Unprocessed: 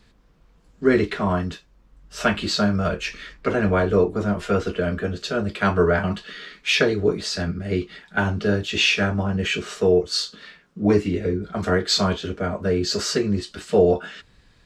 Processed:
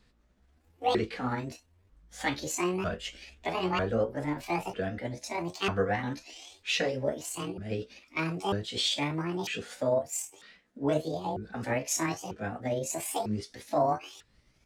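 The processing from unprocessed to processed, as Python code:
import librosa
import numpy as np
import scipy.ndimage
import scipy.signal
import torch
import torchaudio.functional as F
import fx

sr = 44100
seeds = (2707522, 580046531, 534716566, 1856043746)

y = fx.pitch_ramps(x, sr, semitones=12.0, every_ms=947)
y = y * librosa.db_to_amplitude(-9.0)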